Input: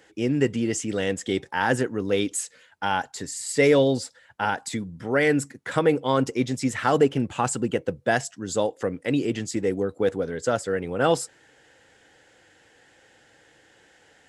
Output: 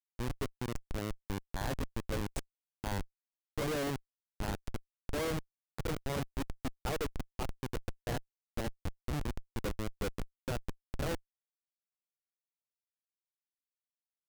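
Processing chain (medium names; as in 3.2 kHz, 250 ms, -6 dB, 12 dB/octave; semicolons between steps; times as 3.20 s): sawtooth pitch modulation +1.5 st, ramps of 1103 ms; Schmitt trigger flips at -20 dBFS; trim -6.5 dB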